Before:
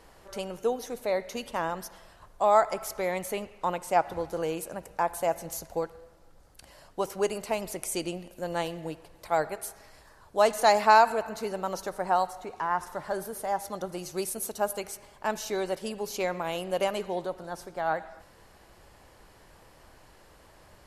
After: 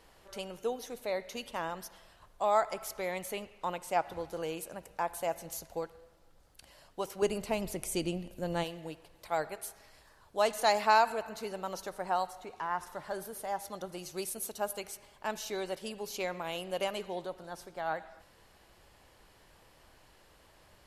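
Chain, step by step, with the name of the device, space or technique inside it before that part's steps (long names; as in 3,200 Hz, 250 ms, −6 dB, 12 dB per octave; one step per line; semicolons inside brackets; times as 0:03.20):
presence and air boost (parametric band 3,200 Hz +5 dB 1.2 octaves; high-shelf EQ 11,000 Hz +4.5 dB)
0:07.22–0:08.64: low-shelf EQ 330 Hz +12 dB
level −6.5 dB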